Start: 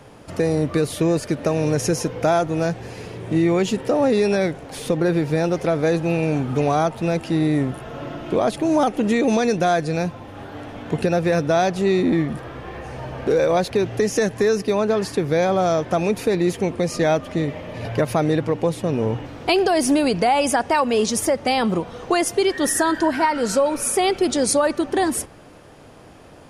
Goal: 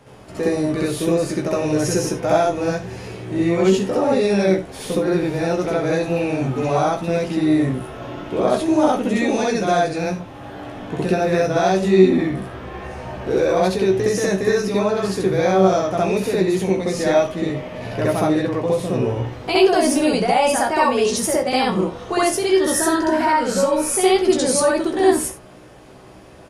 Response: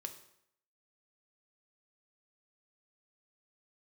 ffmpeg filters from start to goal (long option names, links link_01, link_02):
-filter_complex "[0:a]asplit=2[link_01][link_02];[link_02]adelay=16,volume=-5dB[link_03];[link_01][link_03]amix=inputs=2:normalize=0,asplit=2[link_04][link_05];[1:a]atrim=start_sample=2205,atrim=end_sample=4410,adelay=65[link_06];[link_05][link_06]afir=irnorm=-1:irlink=0,volume=7.5dB[link_07];[link_04][link_07]amix=inputs=2:normalize=0,volume=-5.5dB"